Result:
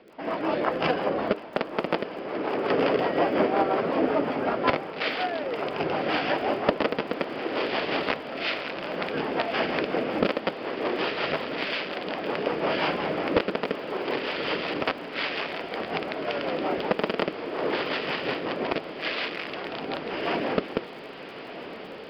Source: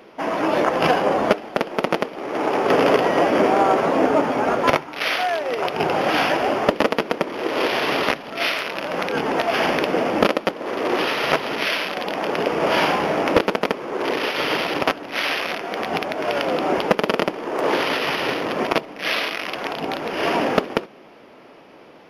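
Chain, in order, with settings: rotary cabinet horn 5.5 Hz; resampled via 11.025 kHz; crackle 45 per s -39 dBFS; on a send: echo that smears into a reverb 1222 ms, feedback 75%, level -13.5 dB; on the sum: trim -4.5 dB

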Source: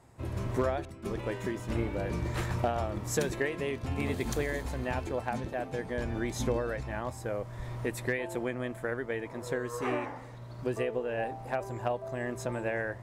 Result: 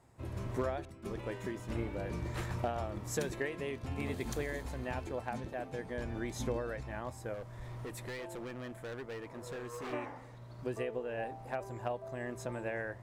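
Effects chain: 7.34–9.93 s: hard clipper -33.5 dBFS, distortion -15 dB; trim -5.5 dB

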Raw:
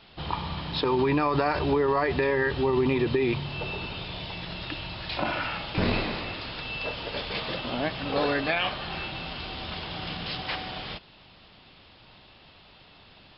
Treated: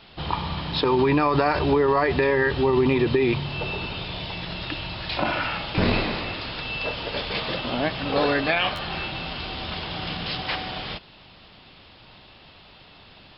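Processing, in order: buffer glitch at 8.75 s, samples 512, times 2; trim +4 dB

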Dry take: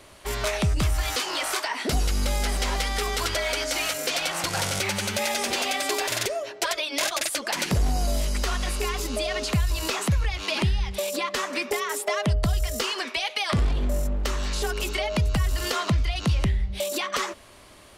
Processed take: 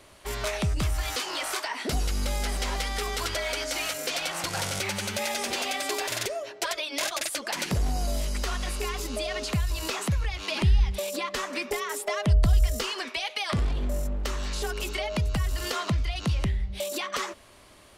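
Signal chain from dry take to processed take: 10.51–13.09 s: bass shelf 81 Hz +11.5 dB; trim -3.5 dB

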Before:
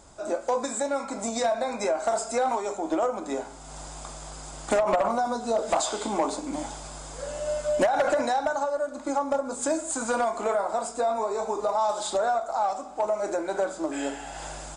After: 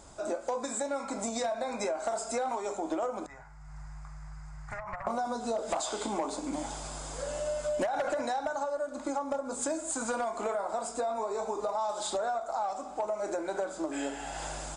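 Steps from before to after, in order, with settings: 3.26–5.07 s: FFT filter 150 Hz 0 dB, 240 Hz -29 dB, 470 Hz -29 dB, 860 Hz -13 dB, 2 kHz -5 dB, 3.3 kHz -29 dB, 5 kHz -18 dB, 11 kHz -28 dB; compression 2.5:1, threshold -32 dBFS, peak gain reduction 9 dB

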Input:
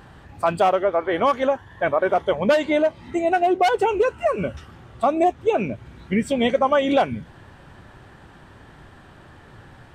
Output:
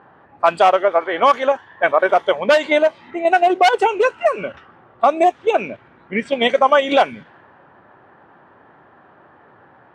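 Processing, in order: in parallel at 0 dB: level held to a coarse grid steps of 19 dB; on the sum: frequency weighting A; level-controlled noise filter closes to 1.1 kHz, open at -13 dBFS; trim +2 dB

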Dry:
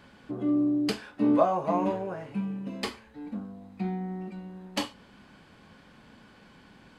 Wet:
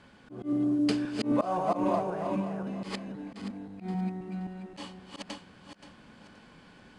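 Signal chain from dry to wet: backward echo that repeats 263 ms, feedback 49%, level -3 dB; slow attack 106 ms; trim -2 dB; IMA ADPCM 88 kbps 22.05 kHz

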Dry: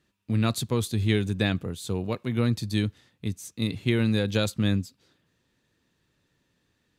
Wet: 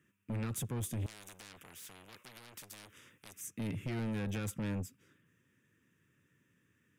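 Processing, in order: high-pass 89 Hz 24 dB/octave; peak limiter -21.5 dBFS, peak gain reduction 10 dB; static phaser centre 1.8 kHz, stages 4; saturation -34.5 dBFS, distortion -8 dB; 1.06–3.41 s: spectrum-flattening compressor 4:1; trim +1 dB

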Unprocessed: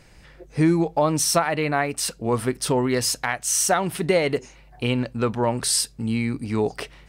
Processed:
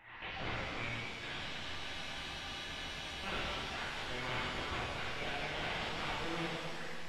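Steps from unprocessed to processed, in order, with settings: reverse the whole clip; high-pass 940 Hz 12 dB/octave; reverb removal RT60 0.57 s; level-controlled noise filter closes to 1.7 kHz, open at -20.5 dBFS; dynamic bell 3 kHz, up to -7 dB, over -42 dBFS, Q 1; compression 2.5:1, threshold -46 dBFS, peak gain reduction 17 dB; integer overflow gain 38.5 dB; LPC vocoder at 8 kHz pitch kept; spectral freeze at 1.42 s, 1.79 s; pitch-shifted reverb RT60 2.4 s, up +7 st, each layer -8 dB, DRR -6.5 dB; trim +2.5 dB

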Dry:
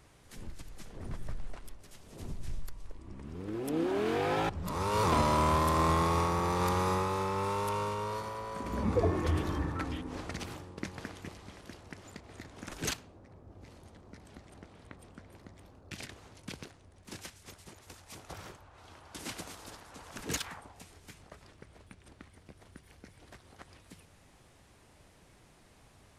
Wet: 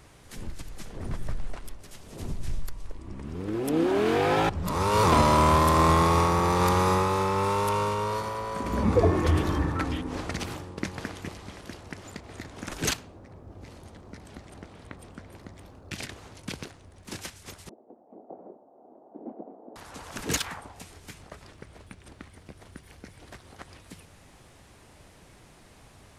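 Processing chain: 17.69–19.76 s: Chebyshev band-pass 220–730 Hz, order 3; trim +7 dB

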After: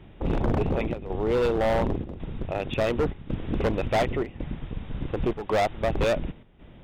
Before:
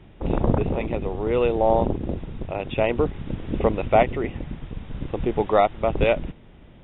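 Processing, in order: hard clipper -19.5 dBFS, distortion -8 dB; square tremolo 0.91 Hz, depth 65%, duty 85%

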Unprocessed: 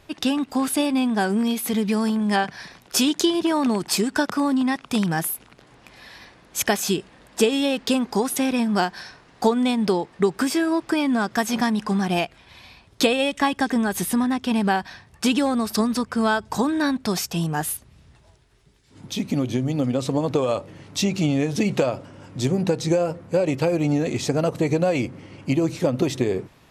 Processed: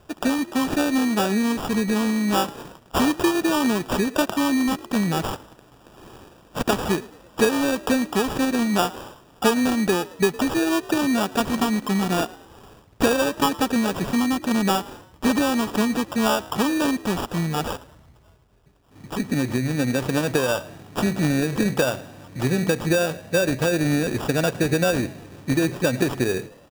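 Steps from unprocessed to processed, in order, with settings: sample-and-hold 21×; frequency-shifting echo 110 ms, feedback 46%, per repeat +52 Hz, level -20.5 dB

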